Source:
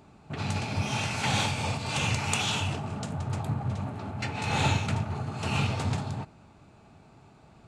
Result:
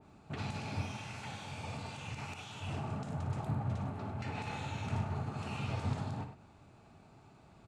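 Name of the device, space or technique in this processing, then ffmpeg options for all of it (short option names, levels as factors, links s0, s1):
de-esser from a sidechain: -filter_complex "[0:a]asplit=2[s0][s1];[s1]highpass=6700,apad=whole_len=338505[s2];[s0][s2]sidechaincompress=threshold=0.00282:ratio=12:attack=3.7:release=39,aecho=1:1:57|100:0.316|0.266,adynamicequalizer=threshold=0.00178:dfrequency=2600:dqfactor=0.7:tfrequency=2600:tqfactor=0.7:attack=5:release=100:ratio=0.375:range=2:mode=cutabove:tftype=highshelf,volume=0.562"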